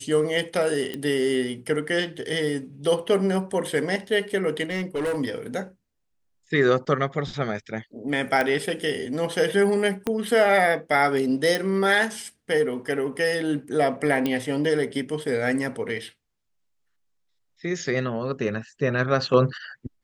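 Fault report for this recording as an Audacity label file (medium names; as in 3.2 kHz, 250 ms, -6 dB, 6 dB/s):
0.940000	0.940000	pop -17 dBFS
4.640000	5.190000	clipped -22.5 dBFS
8.410000	8.410000	pop -11 dBFS
10.070000	10.070000	pop -12 dBFS
11.550000	11.550000	pop
14.260000	14.260000	pop -12 dBFS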